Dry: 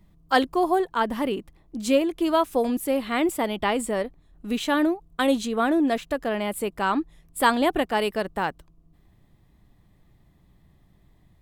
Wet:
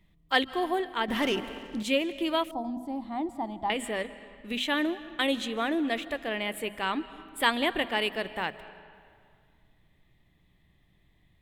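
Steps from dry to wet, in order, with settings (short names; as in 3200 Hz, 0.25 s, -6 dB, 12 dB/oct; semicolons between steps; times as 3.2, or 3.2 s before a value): band shelf 2600 Hz +9.5 dB 1.3 oct; notches 50/100/150/200/250 Hz; reverb RT60 2.2 s, pre-delay 0.112 s, DRR 15 dB; 1.08–1.83 sample leveller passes 2; 2.51–3.7 EQ curve 310 Hz 0 dB, 480 Hz -19 dB, 800 Hz +7 dB, 1500 Hz -18 dB, 2700 Hz -28 dB, 4700 Hz -11 dB, 12000 Hz -22 dB; gain -7 dB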